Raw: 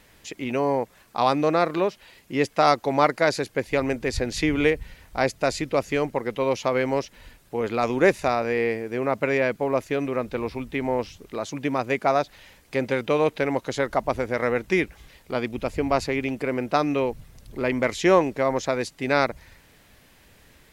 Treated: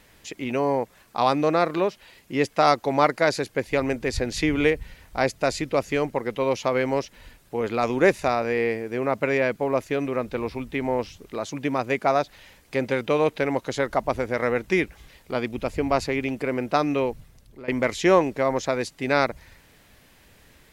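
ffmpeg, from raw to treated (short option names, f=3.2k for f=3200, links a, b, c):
-filter_complex "[0:a]asplit=2[a][b];[a]atrim=end=17.68,asetpts=PTS-STARTPTS,afade=t=out:st=17.06:d=0.62:silence=0.125893[c];[b]atrim=start=17.68,asetpts=PTS-STARTPTS,afade=t=in:d=0.004:c=hsin:silence=0.125893[d];[c][d]concat=n=2:v=0:a=1"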